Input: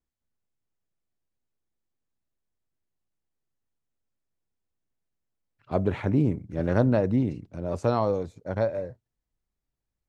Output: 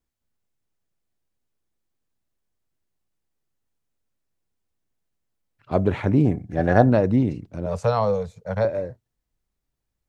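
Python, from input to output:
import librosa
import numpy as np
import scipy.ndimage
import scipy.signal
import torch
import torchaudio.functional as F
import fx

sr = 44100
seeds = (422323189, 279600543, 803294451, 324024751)

y = fx.small_body(x, sr, hz=(730.0, 1700.0), ring_ms=45, db=15, at=(6.25, 6.9))
y = fx.cheby1_bandstop(y, sr, low_hz=210.0, high_hz=440.0, order=3, at=(7.66, 8.65))
y = y * 10.0 ** (4.5 / 20.0)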